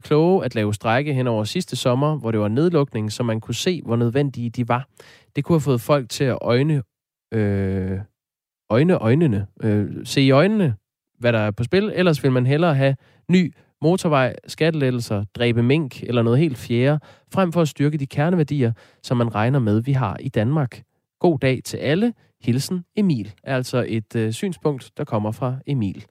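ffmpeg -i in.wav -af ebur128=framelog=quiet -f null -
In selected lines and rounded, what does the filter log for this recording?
Integrated loudness:
  I:         -20.8 LUFS
  Threshold: -31.0 LUFS
Loudness range:
  LRA:         3.2 LU
  Threshold: -41.0 LUFS
  LRA low:   -22.5 LUFS
  LRA high:  -19.3 LUFS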